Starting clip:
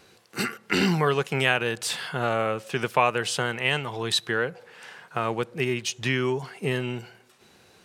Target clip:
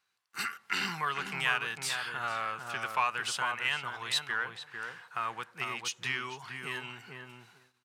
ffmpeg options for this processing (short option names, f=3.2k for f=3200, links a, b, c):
-filter_complex "[0:a]asplit=2[a][b];[b]asoftclip=type=tanh:threshold=-21.5dB,volume=-6dB[c];[a][c]amix=inputs=2:normalize=0,lowshelf=f=730:t=q:w=1.5:g=-13,asplit=2[d][e];[e]adelay=448,lowpass=f=1.1k:p=1,volume=-3dB,asplit=2[f][g];[g]adelay=448,lowpass=f=1.1k:p=1,volume=0.2,asplit=2[h][i];[i]adelay=448,lowpass=f=1.1k:p=1,volume=0.2[j];[d][f][h][j]amix=inputs=4:normalize=0,agate=range=-17dB:threshold=-49dB:ratio=16:detection=peak,volume=-9dB"